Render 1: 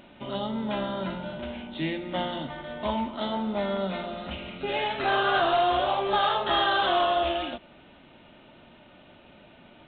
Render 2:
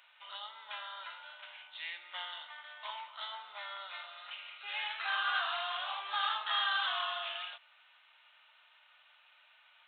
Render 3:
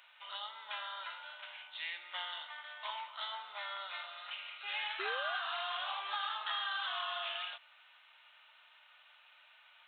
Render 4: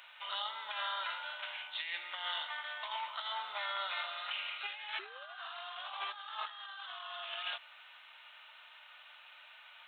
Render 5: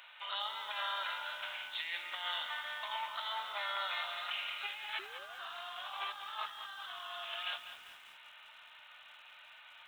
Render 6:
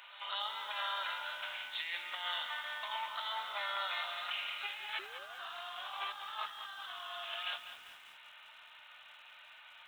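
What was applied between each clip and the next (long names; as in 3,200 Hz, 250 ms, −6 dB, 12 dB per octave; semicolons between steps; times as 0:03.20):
high-pass filter 1,100 Hz 24 dB per octave; level −5 dB
downward compressor 6 to 1, threshold −36 dBFS, peak gain reduction 8 dB; sound drawn into the spectrogram rise, 0:04.99–0:05.38, 370–780 Hz −46 dBFS; level +1.5 dB
compressor whose output falls as the input rises −43 dBFS, ratio −0.5; level +3 dB
feedback echo at a low word length 197 ms, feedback 55%, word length 9 bits, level −10 dB
echo ahead of the sound 193 ms −17 dB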